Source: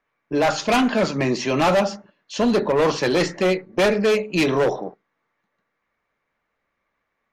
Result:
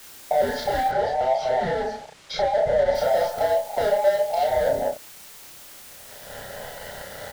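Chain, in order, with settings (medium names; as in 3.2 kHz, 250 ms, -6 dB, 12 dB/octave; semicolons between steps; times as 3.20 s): every band turned upside down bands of 1 kHz; recorder AGC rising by 18 dB/s; treble shelf 2.2 kHz -10 dB; waveshaping leveller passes 3; compression 6:1, threshold -29 dBFS, peak gain reduction 15 dB; static phaser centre 1.7 kHz, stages 8; small resonant body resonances 370/570 Hz, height 9 dB, ringing for 25 ms; word length cut 8-bit, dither triangular; 0.88–2.95 s: distance through air 88 m; doubling 32 ms -2.5 dB; endings held to a fixed fall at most 240 dB/s; trim +2 dB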